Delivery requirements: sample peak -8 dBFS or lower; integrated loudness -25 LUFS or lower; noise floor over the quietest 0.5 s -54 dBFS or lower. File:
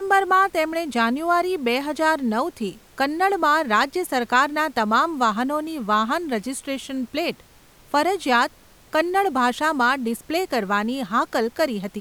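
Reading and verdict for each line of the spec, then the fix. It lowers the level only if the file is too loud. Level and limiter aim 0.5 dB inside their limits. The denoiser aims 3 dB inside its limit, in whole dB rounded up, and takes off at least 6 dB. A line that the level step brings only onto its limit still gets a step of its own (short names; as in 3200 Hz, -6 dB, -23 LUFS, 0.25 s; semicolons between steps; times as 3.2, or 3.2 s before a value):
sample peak -6.0 dBFS: fail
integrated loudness -22.0 LUFS: fail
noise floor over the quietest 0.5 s -51 dBFS: fail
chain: gain -3.5 dB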